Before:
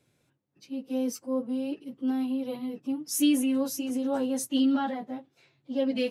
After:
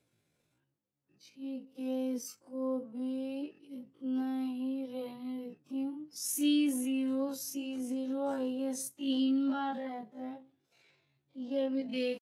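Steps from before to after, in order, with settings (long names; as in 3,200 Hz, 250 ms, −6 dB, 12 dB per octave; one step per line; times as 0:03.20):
low-shelf EQ 220 Hz −2 dB
tempo change 0.5×
level −5.5 dB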